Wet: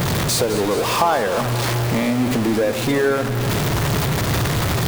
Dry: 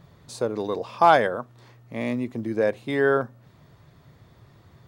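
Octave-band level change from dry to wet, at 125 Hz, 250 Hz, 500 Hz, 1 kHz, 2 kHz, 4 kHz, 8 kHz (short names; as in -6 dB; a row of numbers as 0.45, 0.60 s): +18.0 dB, +9.5 dB, +4.5 dB, +2.0 dB, +5.5 dB, +16.0 dB, n/a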